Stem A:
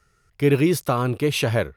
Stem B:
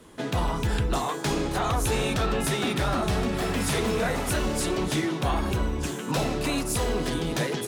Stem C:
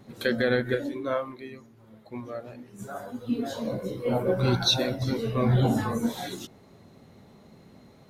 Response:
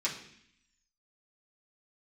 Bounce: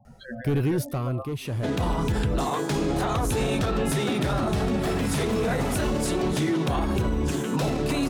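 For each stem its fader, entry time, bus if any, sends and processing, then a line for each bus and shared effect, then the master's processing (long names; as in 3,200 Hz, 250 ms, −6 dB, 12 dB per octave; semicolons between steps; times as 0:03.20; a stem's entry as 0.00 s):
+1.5 dB, 0.05 s, no send, high-shelf EQ 9,600 Hz +6 dB; soft clipping −18.5 dBFS, distortion −11 dB; automatic ducking −15 dB, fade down 1.25 s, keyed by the third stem
+2.0 dB, 1.45 s, no send, low-shelf EQ 110 Hz −11.5 dB; mains-hum notches 60/120/180/240/300/360 Hz
−7.5 dB, 0.00 s, no send, low shelf with overshoot 530 Hz −8.5 dB, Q 3; compressor whose output falls as the input rises −30 dBFS, ratio −0.5; spectral peaks only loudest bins 16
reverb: not used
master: low-shelf EQ 370 Hz +12 dB; brickwall limiter −17 dBFS, peak gain reduction 9 dB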